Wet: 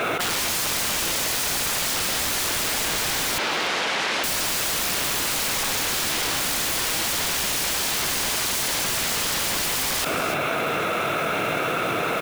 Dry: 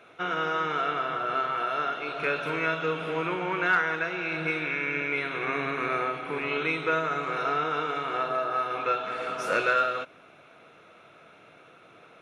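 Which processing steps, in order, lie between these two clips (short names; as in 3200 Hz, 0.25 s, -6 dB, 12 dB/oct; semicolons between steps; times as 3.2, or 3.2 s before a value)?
tracing distortion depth 0.12 ms; AGC gain up to 10 dB; limiter -14 dBFS, peak gain reduction 10 dB; wrapped overs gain 26 dB; modulation noise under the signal 17 dB; 3.38–4.24 BPF 250–3500 Hz; echo 0.294 s -22.5 dB; fast leveller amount 100%; gain +5.5 dB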